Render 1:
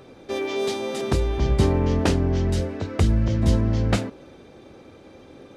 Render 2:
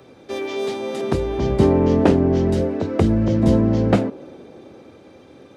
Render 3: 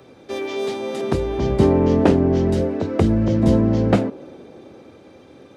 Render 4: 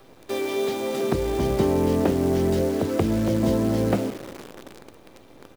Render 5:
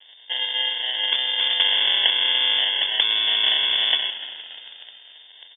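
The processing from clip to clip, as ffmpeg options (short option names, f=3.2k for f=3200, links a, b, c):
-filter_complex "[0:a]highpass=74,acrossover=split=170|840|3200[a][b][c][d];[b]dynaudnorm=f=200:g=13:m=11.5dB[e];[d]alimiter=level_in=7.5dB:limit=-24dB:level=0:latency=1:release=321,volume=-7.5dB[f];[a][e][c][f]amix=inputs=4:normalize=0"
-af anull
-filter_complex "[0:a]acrossover=split=240|720[a][b][c];[a]acompressor=threshold=-26dB:ratio=4[d];[b]acompressor=threshold=-22dB:ratio=4[e];[c]acompressor=threshold=-32dB:ratio=4[f];[d][e][f]amix=inputs=3:normalize=0,asplit=2[g][h];[h]adelay=171,lowpass=f=2k:p=1,volume=-18.5dB,asplit=2[i][j];[j]adelay=171,lowpass=f=2k:p=1,volume=0.37,asplit=2[k][l];[l]adelay=171,lowpass=f=2k:p=1,volume=0.37[m];[g][i][k][m]amix=inputs=4:normalize=0,acrusher=bits=7:dc=4:mix=0:aa=0.000001"
-filter_complex "[0:a]acrusher=samples=38:mix=1:aa=0.000001,asplit=5[a][b][c][d][e];[b]adelay=293,afreqshift=61,volume=-17dB[f];[c]adelay=586,afreqshift=122,volume=-23.2dB[g];[d]adelay=879,afreqshift=183,volume=-29.4dB[h];[e]adelay=1172,afreqshift=244,volume=-35.6dB[i];[a][f][g][h][i]amix=inputs=5:normalize=0,lowpass=f=3.1k:t=q:w=0.5098,lowpass=f=3.1k:t=q:w=0.6013,lowpass=f=3.1k:t=q:w=0.9,lowpass=f=3.1k:t=q:w=2.563,afreqshift=-3600,volume=1dB"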